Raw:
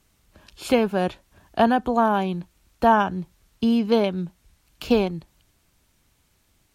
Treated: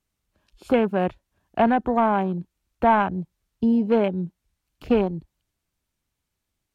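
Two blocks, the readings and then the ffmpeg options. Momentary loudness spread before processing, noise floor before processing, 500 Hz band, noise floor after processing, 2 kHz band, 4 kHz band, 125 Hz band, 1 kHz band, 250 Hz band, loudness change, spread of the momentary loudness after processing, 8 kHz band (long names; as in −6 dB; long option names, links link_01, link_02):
16 LU, −66 dBFS, −0.5 dB, −81 dBFS, −1.5 dB, −8.5 dB, +0.5 dB, −0.5 dB, 0.0 dB, −0.5 dB, 13 LU, can't be measured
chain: -af "acontrast=76,afwtdn=0.0447,volume=-6dB"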